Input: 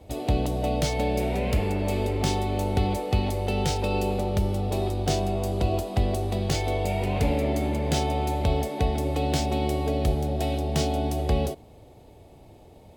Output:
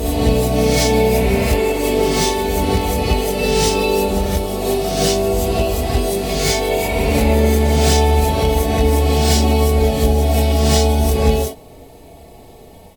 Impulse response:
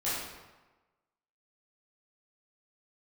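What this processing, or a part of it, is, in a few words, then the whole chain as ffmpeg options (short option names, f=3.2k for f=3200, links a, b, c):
reverse reverb: -filter_complex "[0:a]areverse[a];[1:a]atrim=start_sample=2205[b];[a][b]afir=irnorm=-1:irlink=0,areverse,aemphasis=mode=production:type=cd,aecho=1:1:4.5:0.45,volume=2.5dB"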